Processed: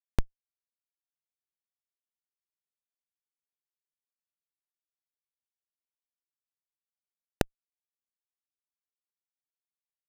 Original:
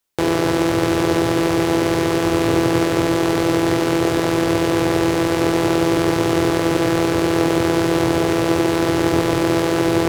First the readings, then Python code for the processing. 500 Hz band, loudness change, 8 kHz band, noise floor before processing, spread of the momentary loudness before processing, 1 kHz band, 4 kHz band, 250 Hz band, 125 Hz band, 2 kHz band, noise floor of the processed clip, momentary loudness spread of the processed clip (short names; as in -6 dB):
-30.5 dB, -17.0 dB, -27.0 dB, -20 dBFS, 1 LU, -30.0 dB, -28.5 dB, -31.5 dB, -23.5 dB, -27.5 dB, under -85 dBFS, 5 LU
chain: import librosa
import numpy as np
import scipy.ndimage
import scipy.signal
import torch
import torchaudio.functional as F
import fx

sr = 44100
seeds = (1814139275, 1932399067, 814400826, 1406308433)

y = fx.cheby_harmonics(x, sr, harmonics=(5, 6, 7), levels_db=(-12, -9, -15), full_scale_db=-2.5)
y = fx.rev_schroeder(y, sr, rt60_s=0.75, comb_ms=29, drr_db=13.0)
y = fx.schmitt(y, sr, flips_db=-8.0)